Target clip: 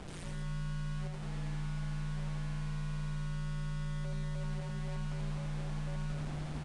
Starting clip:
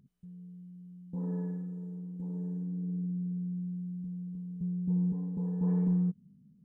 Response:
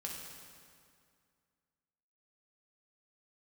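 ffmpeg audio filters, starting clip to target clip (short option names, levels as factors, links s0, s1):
-filter_complex "[0:a]aeval=exprs='val(0)+0.5*0.00708*sgn(val(0))':c=same,highpass=f=56:p=1,areverse,acompressor=threshold=0.00794:ratio=16,areverse,acrusher=bits=5:dc=4:mix=0:aa=0.000001,asplit=2[s0][s1];[s1]aecho=0:1:84.55|189.5:0.794|0.501[s2];[s0][s2]amix=inputs=2:normalize=0,afreqshift=-150,volume=1.58" -ar 22050 -c:a nellymoser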